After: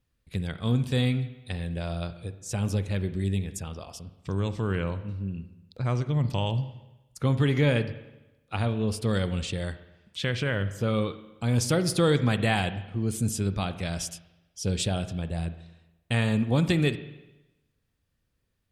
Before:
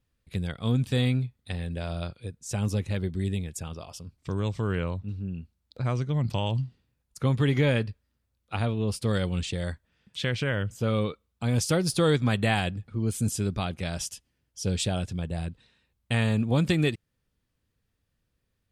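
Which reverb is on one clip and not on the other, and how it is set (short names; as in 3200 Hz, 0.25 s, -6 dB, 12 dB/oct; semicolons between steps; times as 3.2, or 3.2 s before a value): spring tank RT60 1 s, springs 41/60 ms, chirp 45 ms, DRR 11.5 dB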